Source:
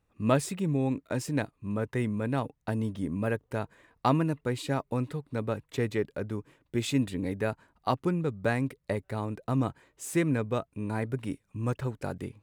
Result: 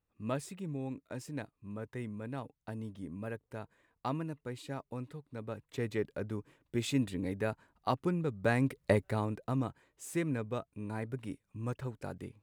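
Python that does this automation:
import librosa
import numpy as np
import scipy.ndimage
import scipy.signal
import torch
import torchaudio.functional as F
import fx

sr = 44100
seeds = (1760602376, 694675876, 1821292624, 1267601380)

y = fx.gain(x, sr, db=fx.line((5.39, -11.0), (6.05, -4.0), (8.33, -4.0), (8.91, 4.0), (9.68, -7.0)))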